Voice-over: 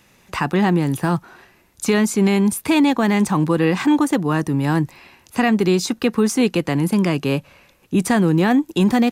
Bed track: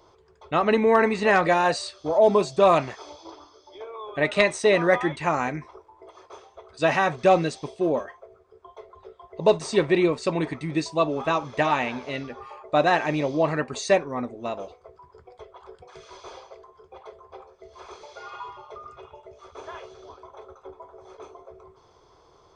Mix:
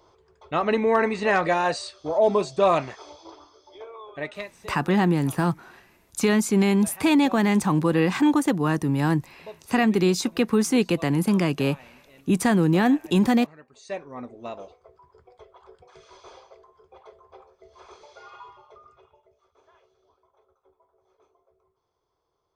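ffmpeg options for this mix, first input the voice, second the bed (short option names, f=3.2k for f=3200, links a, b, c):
-filter_complex "[0:a]adelay=4350,volume=-3.5dB[a];[1:a]volume=16dB,afade=t=out:st=3.82:d=0.68:silence=0.0891251,afade=t=in:st=13.74:d=0.63:silence=0.125893,afade=t=out:st=18.1:d=1.39:silence=0.158489[b];[a][b]amix=inputs=2:normalize=0"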